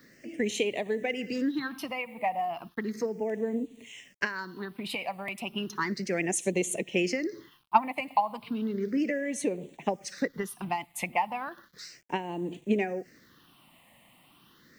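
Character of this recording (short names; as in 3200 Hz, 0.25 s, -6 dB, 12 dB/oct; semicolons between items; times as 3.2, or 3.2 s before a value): a quantiser's noise floor 10-bit, dither none; phasing stages 6, 0.34 Hz, lowest notch 400–1400 Hz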